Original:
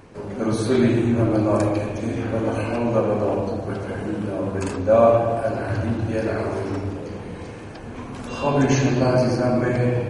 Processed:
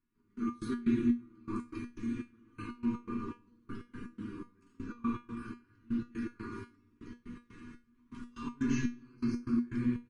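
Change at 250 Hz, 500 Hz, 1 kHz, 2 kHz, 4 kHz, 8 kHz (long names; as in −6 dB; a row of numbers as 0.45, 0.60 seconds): −11.0 dB, −28.5 dB, −21.5 dB, −17.5 dB, below −15 dB, can't be measured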